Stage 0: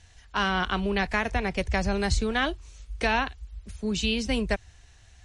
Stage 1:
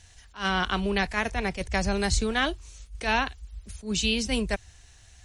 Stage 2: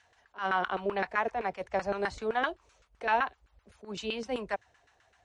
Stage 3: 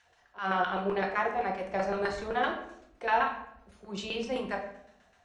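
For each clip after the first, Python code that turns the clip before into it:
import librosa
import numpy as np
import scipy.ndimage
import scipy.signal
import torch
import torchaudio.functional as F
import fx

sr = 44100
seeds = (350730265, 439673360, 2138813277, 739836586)

y1 = fx.high_shelf(x, sr, hz=5900.0, db=10.0)
y1 = fx.attack_slew(y1, sr, db_per_s=210.0)
y2 = fx.filter_lfo_bandpass(y1, sr, shape='saw_down', hz=7.8, low_hz=440.0, high_hz=1500.0, q=2.0)
y2 = y2 * librosa.db_to_amplitude(3.5)
y3 = fx.room_shoebox(y2, sr, seeds[0], volume_m3=160.0, walls='mixed', distance_m=0.87)
y3 = y3 * librosa.db_to_amplitude(-1.5)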